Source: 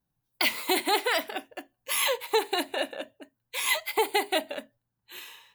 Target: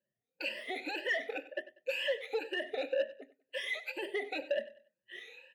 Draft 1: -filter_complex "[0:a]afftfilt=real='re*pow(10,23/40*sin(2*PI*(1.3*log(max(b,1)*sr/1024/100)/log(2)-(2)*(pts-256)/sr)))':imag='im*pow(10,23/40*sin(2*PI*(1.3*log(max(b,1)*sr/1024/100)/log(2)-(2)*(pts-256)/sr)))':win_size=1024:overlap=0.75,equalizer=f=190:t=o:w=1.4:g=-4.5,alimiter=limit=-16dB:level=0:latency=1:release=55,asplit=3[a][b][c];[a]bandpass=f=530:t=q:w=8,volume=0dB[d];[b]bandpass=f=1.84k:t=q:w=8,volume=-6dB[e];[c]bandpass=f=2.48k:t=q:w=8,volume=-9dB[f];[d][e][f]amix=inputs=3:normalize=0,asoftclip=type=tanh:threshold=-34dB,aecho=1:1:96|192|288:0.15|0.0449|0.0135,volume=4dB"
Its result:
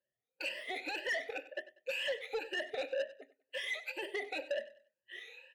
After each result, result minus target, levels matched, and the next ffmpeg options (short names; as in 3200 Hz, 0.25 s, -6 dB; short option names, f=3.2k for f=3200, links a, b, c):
soft clip: distortion +6 dB; 250 Hz band -3.0 dB
-filter_complex "[0:a]afftfilt=real='re*pow(10,23/40*sin(2*PI*(1.3*log(max(b,1)*sr/1024/100)/log(2)-(2)*(pts-256)/sr)))':imag='im*pow(10,23/40*sin(2*PI*(1.3*log(max(b,1)*sr/1024/100)/log(2)-(2)*(pts-256)/sr)))':win_size=1024:overlap=0.75,equalizer=f=190:t=o:w=1.4:g=-4.5,alimiter=limit=-16dB:level=0:latency=1:release=55,asplit=3[a][b][c];[a]bandpass=f=530:t=q:w=8,volume=0dB[d];[b]bandpass=f=1.84k:t=q:w=8,volume=-6dB[e];[c]bandpass=f=2.48k:t=q:w=8,volume=-9dB[f];[d][e][f]amix=inputs=3:normalize=0,asoftclip=type=tanh:threshold=-27.5dB,aecho=1:1:96|192|288:0.15|0.0449|0.0135,volume=4dB"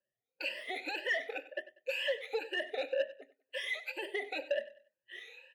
250 Hz band -4.0 dB
-filter_complex "[0:a]afftfilt=real='re*pow(10,23/40*sin(2*PI*(1.3*log(max(b,1)*sr/1024/100)/log(2)-(2)*(pts-256)/sr)))':imag='im*pow(10,23/40*sin(2*PI*(1.3*log(max(b,1)*sr/1024/100)/log(2)-(2)*(pts-256)/sr)))':win_size=1024:overlap=0.75,equalizer=f=190:t=o:w=1.4:g=7,alimiter=limit=-16dB:level=0:latency=1:release=55,asplit=3[a][b][c];[a]bandpass=f=530:t=q:w=8,volume=0dB[d];[b]bandpass=f=1.84k:t=q:w=8,volume=-6dB[e];[c]bandpass=f=2.48k:t=q:w=8,volume=-9dB[f];[d][e][f]amix=inputs=3:normalize=0,asoftclip=type=tanh:threshold=-27.5dB,aecho=1:1:96|192|288:0.15|0.0449|0.0135,volume=4dB"